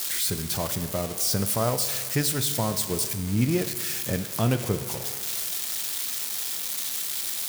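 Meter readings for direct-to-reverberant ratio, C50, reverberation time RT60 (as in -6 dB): 9.0 dB, 10.5 dB, 1.8 s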